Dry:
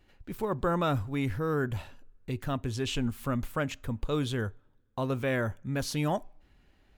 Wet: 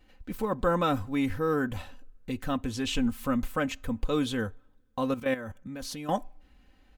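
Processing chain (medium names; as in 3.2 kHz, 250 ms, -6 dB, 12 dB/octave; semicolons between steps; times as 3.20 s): comb 3.9 ms, depth 60%; 5.14–6.09 s: level held to a coarse grid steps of 13 dB; trim +1 dB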